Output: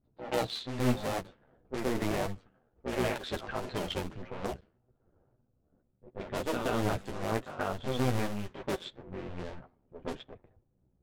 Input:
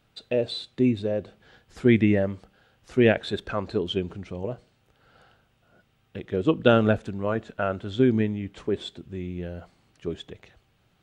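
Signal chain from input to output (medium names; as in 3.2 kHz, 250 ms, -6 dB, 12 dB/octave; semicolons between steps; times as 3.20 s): cycle switcher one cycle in 2, muted; pre-echo 130 ms -12 dB; peak limiter -16.5 dBFS, peak gain reduction 11 dB; chorus voices 4, 0.85 Hz, delay 12 ms, depth 4.3 ms; level-controlled noise filter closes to 400 Hz, open at -31 dBFS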